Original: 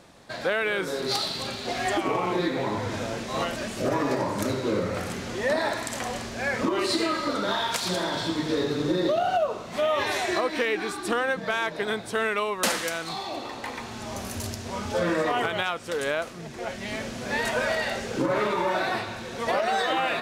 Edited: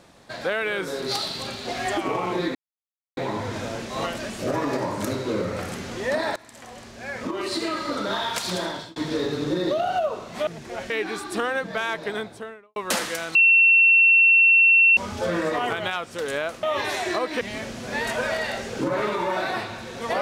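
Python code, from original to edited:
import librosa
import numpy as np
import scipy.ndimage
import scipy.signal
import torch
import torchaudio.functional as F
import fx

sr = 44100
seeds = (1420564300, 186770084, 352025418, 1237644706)

y = fx.studio_fade_out(x, sr, start_s=11.76, length_s=0.73)
y = fx.edit(y, sr, fx.insert_silence(at_s=2.55, length_s=0.62),
    fx.fade_in_from(start_s=5.74, length_s=1.64, floor_db=-19.0),
    fx.fade_out_span(start_s=8.02, length_s=0.32),
    fx.swap(start_s=9.85, length_s=0.78, other_s=16.36, other_length_s=0.43),
    fx.bleep(start_s=13.08, length_s=1.62, hz=2710.0, db=-12.0), tone=tone)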